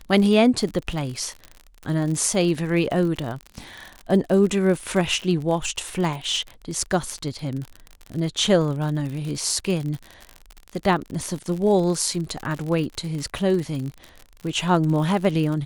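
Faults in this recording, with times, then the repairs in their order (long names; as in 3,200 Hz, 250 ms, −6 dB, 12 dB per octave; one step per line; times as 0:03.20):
surface crackle 58 per second −28 dBFS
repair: click removal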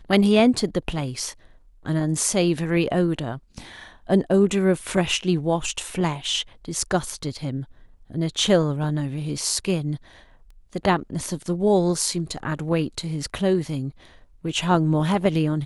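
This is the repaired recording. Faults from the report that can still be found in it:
none of them is left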